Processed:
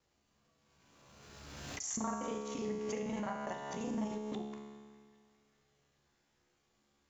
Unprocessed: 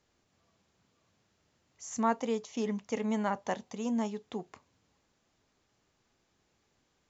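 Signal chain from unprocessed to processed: time reversed locally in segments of 34 ms; compression 2.5:1, threshold -35 dBFS, peak gain reduction 8.5 dB; feedback comb 71 Hz, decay 1.8 s, harmonics all, mix 90%; band-passed feedback delay 405 ms, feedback 72%, band-pass 2.2 kHz, level -21.5 dB; swell ahead of each attack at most 27 dB/s; trim +12 dB

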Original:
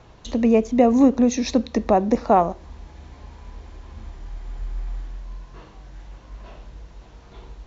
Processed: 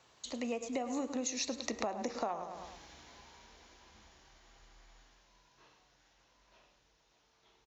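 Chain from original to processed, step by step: Doppler pass-by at 2.18 s, 14 m/s, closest 8.4 m; high-pass 65 Hz 6 dB/octave; tilt EQ +3.5 dB/octave; de-hum 94.82 Hz, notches 29; on a send: feedback delay 105 ms, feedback 38%, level -13 dB; on the sum: compression 20:1, threshold -31 dBFS, peak gain reduction 19 dB; trim -1.5 dB

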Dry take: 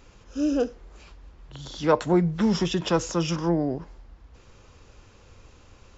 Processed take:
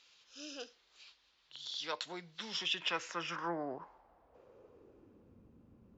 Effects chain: band-pass sweep 3.9 kHz -> 210 Hz, 2.39–5.45 s; trim +2 dB

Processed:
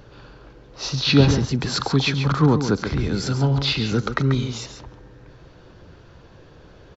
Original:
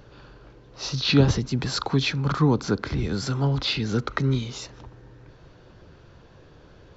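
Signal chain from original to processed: 3.12–3.58 s: band-stop 1.1 kHz, Q 6.3; on a send: delay 138 ms -9 dB; on the sum: trim +3 dB

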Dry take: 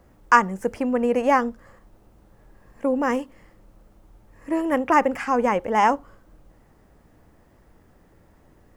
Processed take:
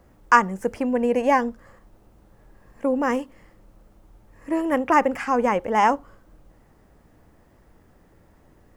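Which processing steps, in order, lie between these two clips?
0.87–1.48 s: Butterworth band-stop 1.3 kHz, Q 4.5

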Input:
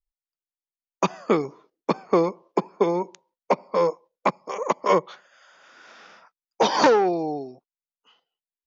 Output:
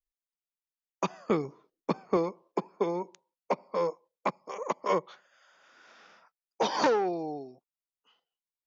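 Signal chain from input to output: 1.30–2.17 s: bass shelf 150 Hz +10.5 dB; trim -8 dB

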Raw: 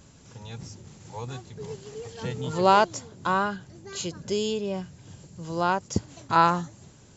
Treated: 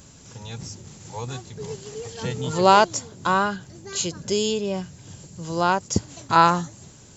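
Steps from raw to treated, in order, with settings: treble shelf 5.8 kHz +9 dB; trim +3.5 dB

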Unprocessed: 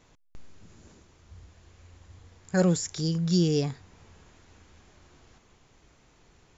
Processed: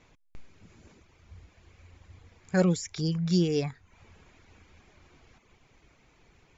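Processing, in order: distance through air 59 m; reverb removal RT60 0.57 s; peaking EQ 2.3 kHz +7 dB 0.35 oct

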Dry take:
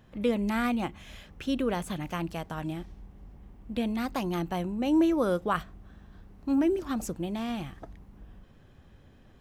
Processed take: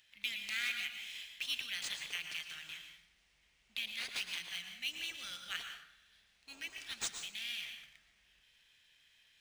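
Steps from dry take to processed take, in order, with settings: inverse Chebyshev high-pass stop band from 1.1 kHz, stop band 40 dB; plate-style reverb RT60 0.83 s, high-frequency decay 0.6×, pre-delay 100 ms, DRR 5 dB; decimation joined by straight lines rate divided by 3×; trim +6 dB

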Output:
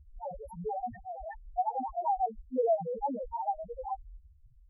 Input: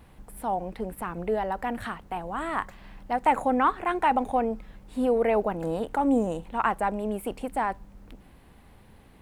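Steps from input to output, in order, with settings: static phaser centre 1.2 kHz, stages 6; plain phase-vocoder stretch 0.51×; loudest bins only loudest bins 1; trim +9 dB

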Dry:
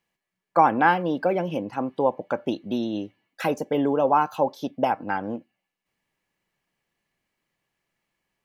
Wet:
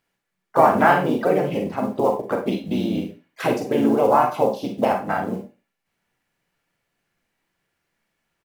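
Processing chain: short-mantissa float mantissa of 4-bit; harmony voices -4 st -4 dB, -3 st -5 dB, +4 st -16 dB; Schroeder reverb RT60 0.31 s, combs from 32 ms, DRR 3.5 dB

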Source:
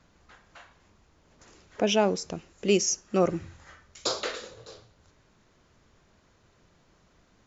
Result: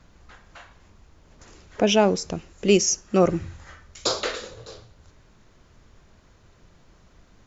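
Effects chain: bass shelf 78 Hz +10.5 dB; trim +4.5 dB

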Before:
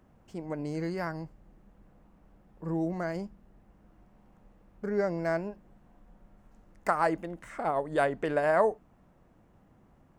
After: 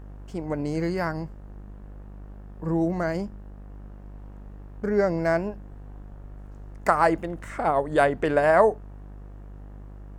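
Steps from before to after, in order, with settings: wow and flutter 24 cents; mains buzz 50 Hz, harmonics 37, -48 dBFS -8 dB/octave; trim +6.5 dB

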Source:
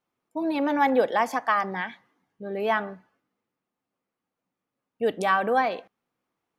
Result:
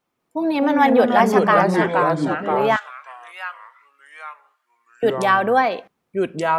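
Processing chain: ever faster or slower copies 191 ms, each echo -3 st, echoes 3; 2.76–5.03 s: Bessel high-pass 1.7 kHz, order 4; trim +6 dB

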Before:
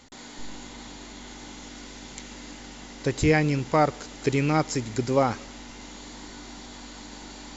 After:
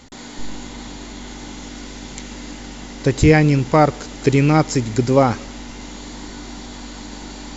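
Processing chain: bass shelf 350 Hz +5 dB; trim +6 dB

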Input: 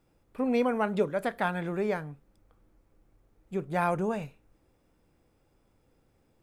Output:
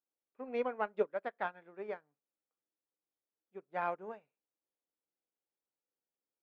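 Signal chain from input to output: in parallel at -9.5 dB: saturation -29 dBFS, distortion -9 dB; on the sum: band-pass 370–2600 Hz; upward expansion 2.5:1, over -41 dBFS; trim -3 dB

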